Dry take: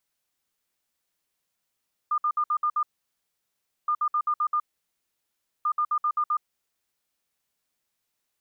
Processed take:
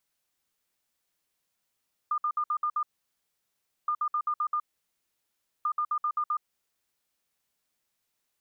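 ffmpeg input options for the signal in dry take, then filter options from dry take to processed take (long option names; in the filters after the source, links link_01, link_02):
-f lavfi -i "aevalsrc='0.0891*sin(2*PI*1210*t)*clip(min(mod(mod(t,1.77),0.13),0.07-mod(mod(t,1.77),0.13))/0.005,0,1)*lt(mod(t,1.77),0.78)':duration=5.31:sample_rate=44100"
-af "acompressor=threshold=-27dB:ratio=6"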